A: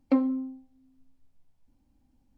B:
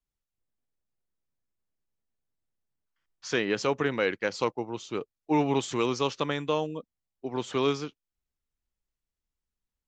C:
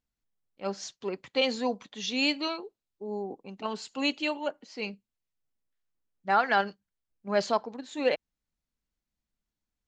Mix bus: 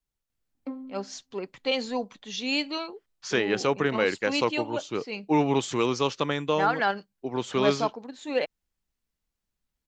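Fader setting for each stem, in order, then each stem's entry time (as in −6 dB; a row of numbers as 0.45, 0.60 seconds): −13.0, +2.0, −0.5 decibels; 0.55, 0.00, 0.30 seconds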